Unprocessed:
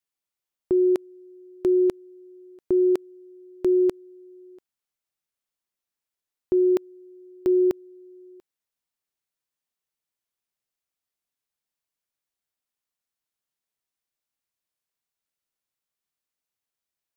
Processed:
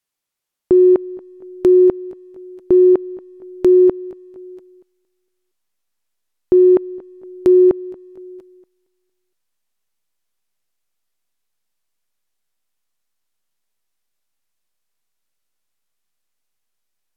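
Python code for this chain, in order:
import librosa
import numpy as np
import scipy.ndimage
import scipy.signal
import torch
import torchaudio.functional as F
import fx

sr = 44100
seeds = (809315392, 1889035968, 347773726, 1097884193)

p1 = fx.env_lowpass_down(x, sr, base_hz=1200.0, full_db=-17.5)
p2 = fx.backlash(p1, sr, play_db=-37.0)
p3 = p1 + (p2 * librosa.db_to_amplitude(-11.0))
p4 = fx.echo_feedback(p3, sr, ms=232, feedback_pct=49, wet_db=-20)
y = p4 * librosa.db_to_amplitude(7.5)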